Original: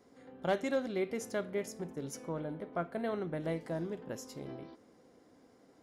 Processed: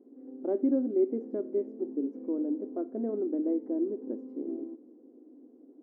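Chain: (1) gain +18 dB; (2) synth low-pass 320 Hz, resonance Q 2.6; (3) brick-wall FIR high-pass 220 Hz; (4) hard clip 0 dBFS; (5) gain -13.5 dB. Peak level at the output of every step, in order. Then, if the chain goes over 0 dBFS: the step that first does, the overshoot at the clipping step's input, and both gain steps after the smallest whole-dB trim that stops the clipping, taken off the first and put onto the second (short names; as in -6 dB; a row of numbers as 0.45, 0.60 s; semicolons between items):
-4.5, -3.5, -4.0, -4.0, -17.5 dBFS; no overload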